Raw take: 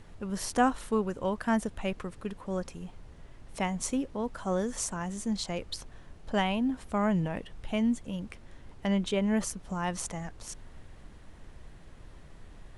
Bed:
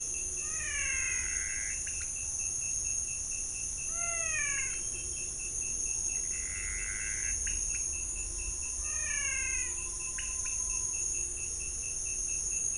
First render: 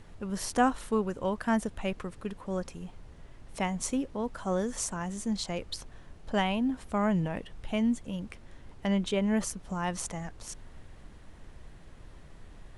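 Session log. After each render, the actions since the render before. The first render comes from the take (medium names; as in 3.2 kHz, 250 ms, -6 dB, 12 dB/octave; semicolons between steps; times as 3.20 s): no audible change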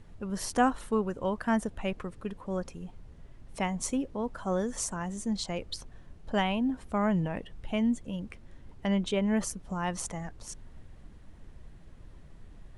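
noise reduction 6 dB, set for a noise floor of -51 dBFS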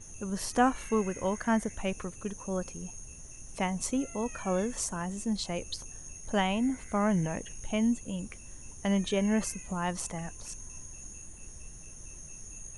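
add bed -14 dB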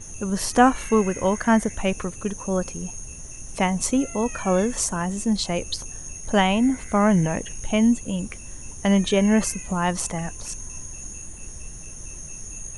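trim +9 dB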